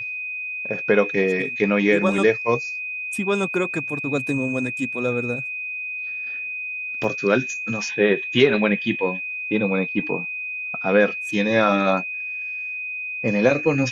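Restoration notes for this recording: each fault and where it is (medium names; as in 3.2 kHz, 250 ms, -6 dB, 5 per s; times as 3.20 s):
whine 2.5 kHz -27 dBFS
7.04 s: dropout 3.2 ms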